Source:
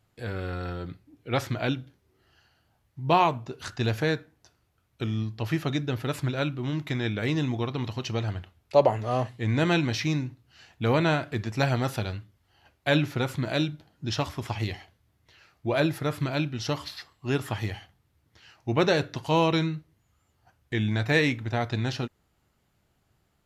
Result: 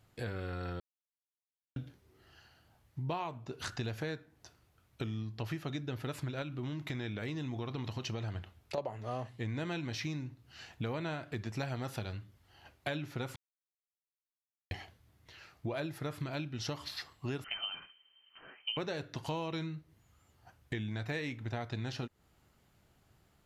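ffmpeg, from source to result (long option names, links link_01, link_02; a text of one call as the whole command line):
ffmpeg -i in.wav -filter_complex "[0:a]asettb=1/sr,asplit=3[link_01][link_02][link_03];[link_01]atrim=end=6.424[link_04];[link_02]atrim=start=6.42:end=8.78,asetpts=PTS-STARTPTS,afade=type=in:duration=0.004:curve=qsin,afade=type=out:start_time=2.356:duration=0.004:curve=qsin,acompressor=threshold=-28dB:ratio=3:attack=3.2:release=140:knee=1:detection=peak[link_05];[link_03]atrim=start=8.776[link_06];[link_04][link_05]acrossfade=duration=0.004:curve1=hsin:curve2=qsin[link_07];[link_07][link_06]acrossfade=duration=0.004:curve1=qsin:curve2=hsin,asettb=1/sr,asplit=3[link_08][link_09][link_10];[link_08]atrim=end=17.444[link_11];[link_09]atrim=start=17.44:end=18.77,asetpts=PTS-STARTPTS,afade=type=in:duration=0.004:curve=qsin,afade=type=out:start_time=1.326:duration=0.004:curve=qsin,lowpass=frequency=2700:width_type=q:width=0.5098,lowpass=frequency=2700:width_type=q:width=0.6013,lowpass=frequency=2700:width_type=q:width=0.9,lowpass=frequency=2700:width_type=q:width=2.563,afreqshift=-3200[link_12];[link_10]atrim=start=18.766[link_13];[link_11][link_12]acrossfade=duration=0.004:curve1=hsin:curve2=qsin[link_14];[link_14][link_13]acrossfade=duration=0.004:curve1=qsin:curve2=hsin,asplit=5[link_15][link_16][link_17][link_18][link_19];[link_15]atrim=end=0.8,asetpts=PTS-STARTPTS,afade=type=out:start_time=0.796:duration=0.004:curve=hsin[link_20];[link_16]atrim=start=0.8:end=1.76,asetpts=PTS-STARTPTS,volume=0[link_21];[link_17]atrim=start=1.76:end=13.36,asetpts=PTS-STARTPTS,afade=type=in:duration=0.004:curve=hsin,afade=type=out:start_time=11.596:duration=0.004:curve=hsin[link_22];[link_18]atrim=start=13.36:end=14.71,asetpts=PTS-STARTPTS,volume=0[link_23];[link_19]atrim=start=14.71,asetpts=PTS-STARTPTS,afade=type=in:duration=0.004:curve=hsin[link_24];[link_20][link_21][link_22][link_23][link_24]concat=n=5:v=0:a=1,acompressor=threshold=-38dB:ratio=6,volume=2dB" out.wav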